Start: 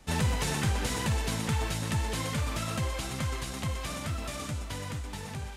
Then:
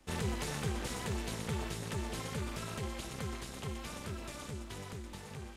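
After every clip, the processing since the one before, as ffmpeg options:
-af "tremolo=f=290:d=0.919,volume=-4dB"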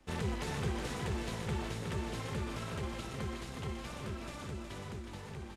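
-filter_complex "[0:a]highshelf=f=6.1k:g=-9.5,asplit=2[a][b];[b]aecho=0:1:366:0.501[c];[a][c]amix=inputs=2:normalize=0"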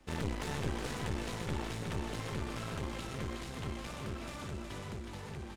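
-af "aeval=exprs='clip(val(0),-1,0.0075)':c=same,volume=2dB"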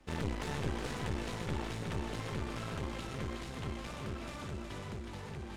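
-af "highshelf=f=7.3k:g=-5,areverse,acompressor=mode=upward:threshold=-42dB:ratio=2.5,areverse"

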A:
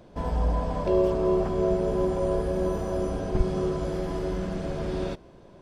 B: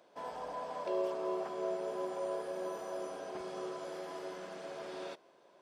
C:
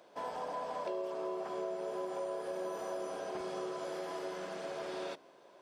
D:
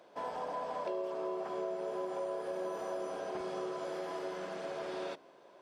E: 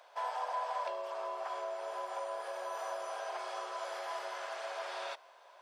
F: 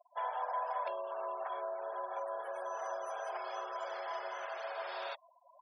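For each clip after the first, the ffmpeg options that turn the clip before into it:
-af "highpass=560,volume=-6.5dB"
-af "bandreject=f=56.05:t=h:w=4,bandreject=f=112.1:t=h:w=4,bandreject=f=168.15:t=h:w=4,bandreject=f=224.2:t=h:w=4,bandreject=f=280.25:t=h:w=4,acompressor=threshold=-39dB:ratio=6,volume=4dB"
-af "highshelf=f=4.6k:g=-5.5,volume=1dB"
-af "highpass=f=700:w=0.5412,highpass=f=700:w=1.3066,volume=4.5dB"
-af "afftfilt=real='re*gte(hypot(re,im),0.00562)':imag='im*gte(hypot(re,im),0.00562)':win_size=1024:overlap=0.75"

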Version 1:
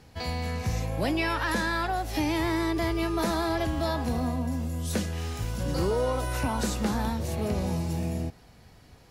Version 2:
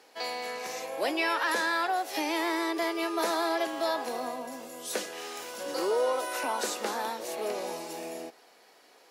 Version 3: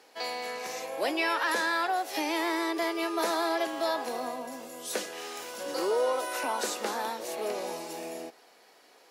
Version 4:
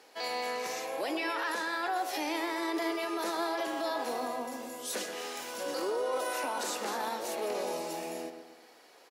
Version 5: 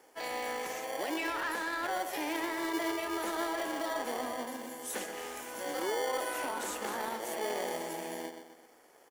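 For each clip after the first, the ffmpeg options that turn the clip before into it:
-af "highpass=f=370:w=0.5412,highpass=f=370:w=1.3066,volume=1dB"
-af anull
-filter_complex "[0:a]alimiter=level_in=2dB:limit=-24dB:level=0:latency=1:release=15,volume=-2dB,asplit=2[a][b];[b]adelay=125,lowpass=f=2.3k:p=1,volume=-8dB,asplit=2[c][d];[d]adelay=125,lowpass=f=2.3k:p=1,volume=0.46,asplit=2[e][f];[f]adelay=125,lowpass=f=2.3k:p=1,volume=0.46,asplit=2[g][h];[h]adelay=125,lowpass=f=2.3k:p=1,volume=0.46,asplit=2[i][j];[j]adelay=125,lowpass=f=2.3k:p=1,volume=0.46[k];[a][c][e][g][i][k]amix=inputs=6:normalize=0"
-filter_complex "[0:a]acrossover=split=690|5700[a][b][c];[a]acrusher=samples=34:mix=1:aa=0.000001[d];[b]adynamicsmooth=sensitivity=7:basefreq=1.8k[e];[d][e][c]amix=inputs=3:normalize=0"

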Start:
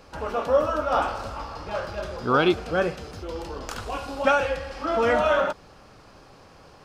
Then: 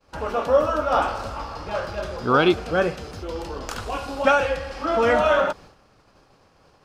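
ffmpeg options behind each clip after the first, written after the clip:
-af "agate=range=-33dB:threshold=-42dB:ratio=3:detection=peak,volume=2.5dB"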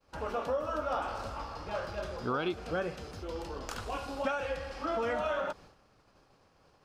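-af "acompressor=threshold=-21dB:ratio=6,volume=-8dB"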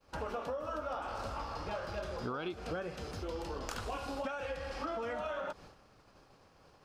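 -af "acompressor=threshold=-38dB:ratio=6,volume=2.5dB"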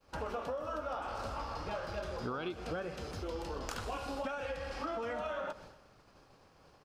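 -af "aecho=1:1:126|252|378|504:0.141|0.0664|0.0312|0.0147"

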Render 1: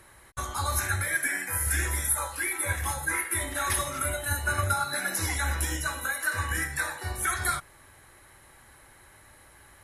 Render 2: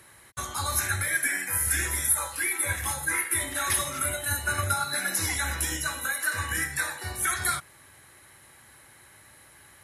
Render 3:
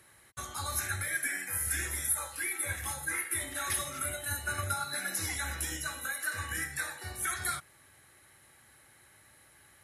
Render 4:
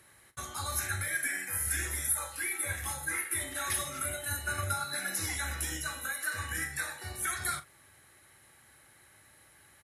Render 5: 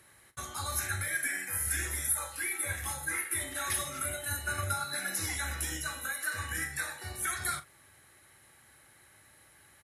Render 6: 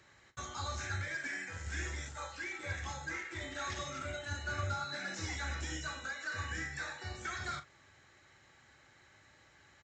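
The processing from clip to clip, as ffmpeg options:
-filter_complex "[0:a]acrossover=split=1700[a][b];[a]lowshelf=f=170:g=8.5[c];[b]acontrast=41[d];[c][d]amix=inputs=2:normalize=0,highpass=120,volume=-2.5dB"
-af "bandreject=f=1k:w=12,volume=-6.5dB"
-filter_complex "[0:a]asplit=2[a][b];[b]adelay=41,volume=-13dB[c];[a][c]amix=inputs=2:normalize=0"
-af anull
-filter_complex "[0:a]acrossover=split=920[a][b];[b]asoftclip=type=tanh:threshold=-34.5dB[c];[a][c]amix=inputs=2:normalize=0,aresample=16000,aresample=44100,volume=-1dB"

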